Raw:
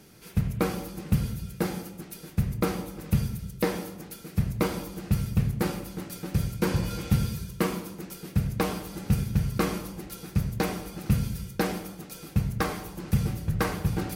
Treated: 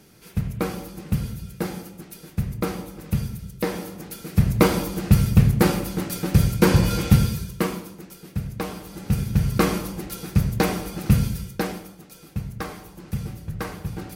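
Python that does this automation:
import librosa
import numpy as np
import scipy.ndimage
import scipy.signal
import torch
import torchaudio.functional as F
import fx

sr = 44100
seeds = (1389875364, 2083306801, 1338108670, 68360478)

y = fx.gain(x, sr, db=fx.line((3.61, 0.5), (4.59, 9.5), (7.02, 9.5), (8.07, -2.5), (8.73, -2.5), (9.53, 6.5), (11.22, 6.5), (11.97, -4.0)))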